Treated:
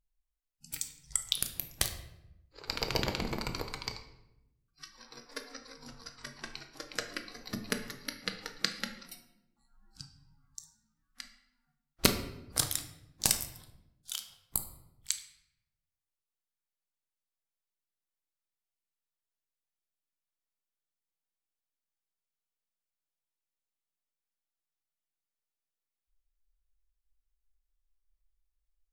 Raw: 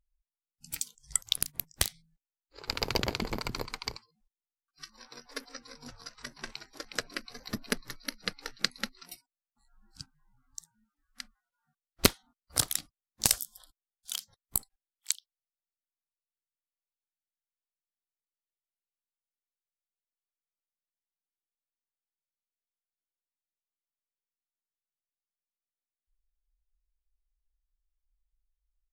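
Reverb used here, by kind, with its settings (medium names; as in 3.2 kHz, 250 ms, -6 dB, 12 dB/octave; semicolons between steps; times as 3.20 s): simulated room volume 300 m³, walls mixed, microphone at 0.58 m; trim -2.5 dB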